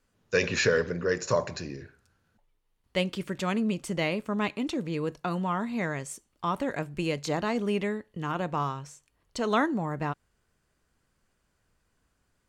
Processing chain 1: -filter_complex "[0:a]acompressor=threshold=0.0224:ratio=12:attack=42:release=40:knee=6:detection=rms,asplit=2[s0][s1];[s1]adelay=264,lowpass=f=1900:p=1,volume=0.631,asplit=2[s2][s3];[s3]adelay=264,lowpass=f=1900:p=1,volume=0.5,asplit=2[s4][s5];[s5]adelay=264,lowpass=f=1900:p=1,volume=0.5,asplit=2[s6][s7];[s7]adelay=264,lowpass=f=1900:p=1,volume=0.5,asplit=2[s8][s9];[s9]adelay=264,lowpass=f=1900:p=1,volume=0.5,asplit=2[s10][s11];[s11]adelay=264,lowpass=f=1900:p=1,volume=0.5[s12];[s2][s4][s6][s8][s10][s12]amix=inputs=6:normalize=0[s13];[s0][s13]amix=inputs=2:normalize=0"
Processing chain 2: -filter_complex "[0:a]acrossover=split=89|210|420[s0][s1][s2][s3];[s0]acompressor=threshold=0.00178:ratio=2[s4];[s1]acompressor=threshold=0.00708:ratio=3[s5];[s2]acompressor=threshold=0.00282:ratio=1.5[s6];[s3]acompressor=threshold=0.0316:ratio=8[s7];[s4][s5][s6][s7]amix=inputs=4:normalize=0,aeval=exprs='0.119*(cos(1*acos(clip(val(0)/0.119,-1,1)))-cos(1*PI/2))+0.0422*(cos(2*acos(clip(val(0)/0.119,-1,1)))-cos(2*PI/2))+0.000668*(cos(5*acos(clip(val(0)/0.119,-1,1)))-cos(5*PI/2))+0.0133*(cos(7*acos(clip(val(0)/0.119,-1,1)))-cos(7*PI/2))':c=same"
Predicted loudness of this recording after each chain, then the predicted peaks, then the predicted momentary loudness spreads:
-34.0 LUFS, -36.5 LUFS; -17.5 dBFS, -14.0 dBFS; 9 LU, 9 LU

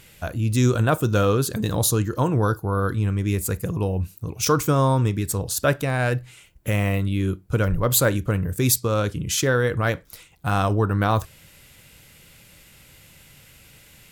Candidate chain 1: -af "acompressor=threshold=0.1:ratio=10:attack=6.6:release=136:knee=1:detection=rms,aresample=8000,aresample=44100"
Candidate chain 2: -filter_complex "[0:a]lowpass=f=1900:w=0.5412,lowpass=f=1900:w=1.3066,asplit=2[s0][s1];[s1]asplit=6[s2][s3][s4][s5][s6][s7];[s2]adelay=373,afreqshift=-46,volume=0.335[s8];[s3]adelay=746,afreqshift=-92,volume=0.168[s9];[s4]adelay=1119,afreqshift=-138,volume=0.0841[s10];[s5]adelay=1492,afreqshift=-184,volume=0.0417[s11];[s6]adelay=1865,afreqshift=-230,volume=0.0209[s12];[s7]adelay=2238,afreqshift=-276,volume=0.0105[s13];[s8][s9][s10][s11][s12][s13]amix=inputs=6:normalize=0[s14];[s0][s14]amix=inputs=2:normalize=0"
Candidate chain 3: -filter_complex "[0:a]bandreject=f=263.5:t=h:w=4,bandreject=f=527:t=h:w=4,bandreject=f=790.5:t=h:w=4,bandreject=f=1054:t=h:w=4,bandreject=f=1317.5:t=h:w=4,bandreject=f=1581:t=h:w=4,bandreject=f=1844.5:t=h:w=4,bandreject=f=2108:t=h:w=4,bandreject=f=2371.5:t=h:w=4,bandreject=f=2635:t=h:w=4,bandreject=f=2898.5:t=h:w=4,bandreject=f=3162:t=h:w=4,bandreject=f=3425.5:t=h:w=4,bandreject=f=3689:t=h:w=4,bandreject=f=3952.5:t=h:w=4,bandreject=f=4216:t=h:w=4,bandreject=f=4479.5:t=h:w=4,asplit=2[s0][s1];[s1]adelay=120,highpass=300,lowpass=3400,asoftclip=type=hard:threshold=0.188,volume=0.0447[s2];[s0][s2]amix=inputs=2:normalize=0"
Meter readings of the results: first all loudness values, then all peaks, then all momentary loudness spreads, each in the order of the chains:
-27.5 LUFS, -23.0 LUFS, -22.5 LUFS; -13.0 dBFS, -7.0 dBFS, -5.5 dBFS; 5 LU, 11 LU, 7 LU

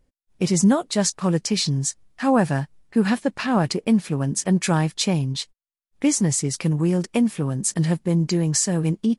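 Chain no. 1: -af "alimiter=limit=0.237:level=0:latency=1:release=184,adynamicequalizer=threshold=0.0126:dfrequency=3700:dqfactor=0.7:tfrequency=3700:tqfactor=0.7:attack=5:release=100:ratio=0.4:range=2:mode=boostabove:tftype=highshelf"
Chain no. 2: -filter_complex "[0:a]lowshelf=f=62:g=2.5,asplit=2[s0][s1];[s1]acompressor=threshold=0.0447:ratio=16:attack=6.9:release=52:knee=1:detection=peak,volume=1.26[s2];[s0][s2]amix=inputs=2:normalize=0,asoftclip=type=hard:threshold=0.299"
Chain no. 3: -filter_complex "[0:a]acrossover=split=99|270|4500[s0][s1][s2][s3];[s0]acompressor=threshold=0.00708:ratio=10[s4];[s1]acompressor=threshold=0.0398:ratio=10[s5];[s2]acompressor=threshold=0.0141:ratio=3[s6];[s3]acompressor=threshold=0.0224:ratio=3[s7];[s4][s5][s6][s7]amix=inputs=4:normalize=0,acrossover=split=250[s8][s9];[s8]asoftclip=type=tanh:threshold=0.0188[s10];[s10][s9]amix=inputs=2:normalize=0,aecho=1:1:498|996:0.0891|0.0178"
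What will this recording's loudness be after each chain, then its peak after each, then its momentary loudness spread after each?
-22.5 LUFS, -18.5 LUFS, -31.5 LUFS; -8.0 dBFS, -10.5 dBFS, -16.0 dBFS; 6 LU, 5 LU, 5 LU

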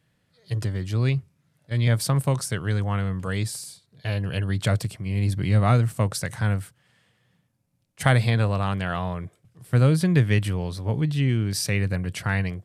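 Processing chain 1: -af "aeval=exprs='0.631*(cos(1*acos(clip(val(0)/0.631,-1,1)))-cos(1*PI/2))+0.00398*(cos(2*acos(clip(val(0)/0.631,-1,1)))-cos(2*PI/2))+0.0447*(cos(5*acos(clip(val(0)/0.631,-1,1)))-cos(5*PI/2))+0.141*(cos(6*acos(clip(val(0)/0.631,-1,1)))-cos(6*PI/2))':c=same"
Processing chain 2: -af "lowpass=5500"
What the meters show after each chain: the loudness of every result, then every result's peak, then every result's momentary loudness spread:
-22.5 LUFS, -24.5 LUFS; -5.0 dBFS, -4.5 dBFS; 9 LU, 10 LU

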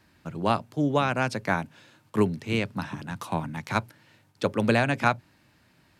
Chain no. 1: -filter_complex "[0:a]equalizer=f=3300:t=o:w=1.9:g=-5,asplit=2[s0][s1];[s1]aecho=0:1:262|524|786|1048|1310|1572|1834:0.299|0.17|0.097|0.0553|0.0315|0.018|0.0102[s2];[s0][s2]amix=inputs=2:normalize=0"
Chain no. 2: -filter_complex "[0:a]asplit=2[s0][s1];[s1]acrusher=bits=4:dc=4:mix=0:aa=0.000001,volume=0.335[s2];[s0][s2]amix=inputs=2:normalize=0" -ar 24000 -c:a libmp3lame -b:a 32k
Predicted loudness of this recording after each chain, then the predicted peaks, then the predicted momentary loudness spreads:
-28.0 LUFS, -25.5 LUFS; -7.5 dBFS, -5.0 dBFS; 14 LU, 12 LU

